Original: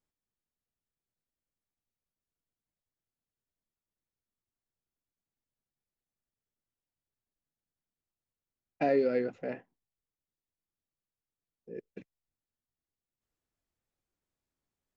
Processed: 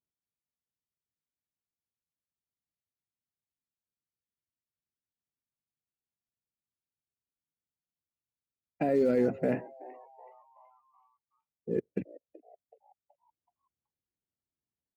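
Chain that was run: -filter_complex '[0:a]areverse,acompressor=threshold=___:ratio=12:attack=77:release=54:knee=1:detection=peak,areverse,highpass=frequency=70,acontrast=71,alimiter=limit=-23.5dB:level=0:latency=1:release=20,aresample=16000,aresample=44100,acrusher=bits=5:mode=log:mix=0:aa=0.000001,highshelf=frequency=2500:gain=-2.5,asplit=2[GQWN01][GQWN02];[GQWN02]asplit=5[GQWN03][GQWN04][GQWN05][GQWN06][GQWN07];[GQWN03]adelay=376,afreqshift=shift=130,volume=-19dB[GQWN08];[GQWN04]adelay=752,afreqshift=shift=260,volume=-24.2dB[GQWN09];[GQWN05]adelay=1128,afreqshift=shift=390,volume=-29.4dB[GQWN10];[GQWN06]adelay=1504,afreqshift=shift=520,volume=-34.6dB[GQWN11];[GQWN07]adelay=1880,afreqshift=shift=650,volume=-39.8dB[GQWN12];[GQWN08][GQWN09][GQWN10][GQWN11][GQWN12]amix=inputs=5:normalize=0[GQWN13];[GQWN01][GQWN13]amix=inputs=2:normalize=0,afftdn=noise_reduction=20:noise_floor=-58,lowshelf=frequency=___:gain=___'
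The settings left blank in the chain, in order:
-39dB, 430, 10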